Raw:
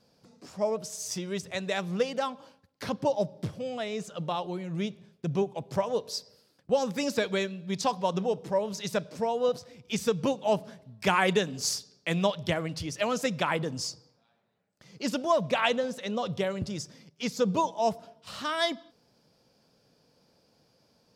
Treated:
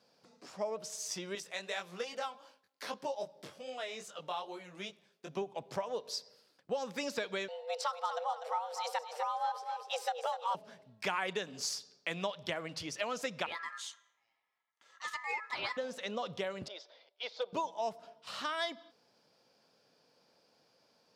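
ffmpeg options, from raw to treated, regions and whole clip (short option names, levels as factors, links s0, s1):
-filter_complex "[0:a]asettb=1/sr,asplit=3[s0][s1][s2];[s0]atrim=end=1.354[s3];[s1]atrim=start=1.35:end=5.37,asetpts=PTS-STARTPTS,afade=t=in:d=0.004:c=qsin,afade=t=out:st=4.016:d=0.004:c=qsin,highpass=f=370:p=1,highshelf=f=7700:g=9,flanger=delay=19:depth=3.2:speed=2.5[s4];[s2]atrim=start=5.366[s5];[s3][s4]acrossfade=d=0.004:c1=hsin:c2=qsin[s6];[s6][s5]acrossfade=d=0.004:c1=qsin:c2=hsin,asettb=1/sr,asplit=3[s7][s8][s9];[s7]atrim=end=7.484[s10];[s8]atrim=start=7.48:end=10.55,asetpts=PTS-STARTPTS,afade=t=in:d=0.004:c=qsin,afade=t=out:st=3.066:d=0.004:c=qsin,bandreject=f=6200:w=7.9,afreqshift=320,aecho=1:1:247|494|741|988:0.316|0.104|0.0344|0.0114,atrim=end_sample=135387[s11];[s9]atrim=start=10.546[s12];[s10][s11]acrossfade=d=0.004:c1=hsin:c2=qsin[s13];[s13][s12]acrossfade=d=0.004:c1=qsin:c2=hsin,asettb=1/sr,asplit=3[s14][s15][s16];[s14]atrim=end=13.464[s17];[s15]atrim=start=13.46:end=15.77,asetpts=PTS-STARTPTS,afade=t=in:d=0.004:c=qsin,afade=t=out:st=2.306:d=0.004:c=qsin,lowshelf=f=200:g=-6.5,flanger=delay=3.8:depth=5:regen=-54:speed=1:shape=triangular,aeval=exprs='val(0)*sin(2*PI*1500*n/s)':c=same[s18];[s16]atrim=start=15.766[s19];[s17][s18]acrossfade=d=0.004:c1=hsin:c2=qsin[s20];[s20][s19]acrossfade=d=0.004:c1=qsin:c2=hsin,asettb=1/sr,asplit=3[s21][s22][s23];[s21]atrim=end=16.684[s24];[s22]atrim=start=16.68:end=17.53,asetpts=PTS-STARTPTS,afade=t=in:d=0.004:c=qsin,afade=t=out:st=0.846:d=0.004:c=qsin,highpass=f=500:w=0.5412,highpass=f=500:w=1.3066,equalizer=f=630:t=q:w=4:g=7,equalizer=f=1200:t=q:w=4:g=-6,equalizer=f=1800:t=q:w=4:g=-7,equalizer=f=2600:t=q:w=4:g=-5,equalizer=f=3700:t=q:w=4:g=6,lowpass=f=3800:w=0.5412,lowpass=f=3800:w=1.3066,volume=10,asoftclip=hard,volume=0.1[s25];[s23]atrim=start=17.526[s26];[s24][s25]acrossfade=d=0.004:c1=hsin:c2=qsin[s27];[s27][s26]acrossfade=d=0.004:c1=qsin:c2=hsin,highpass=f=670:p=1,highshelf=f=6300:g=-9,acompressor=threshold=0.0158:ratio=2.5,volume=1.12"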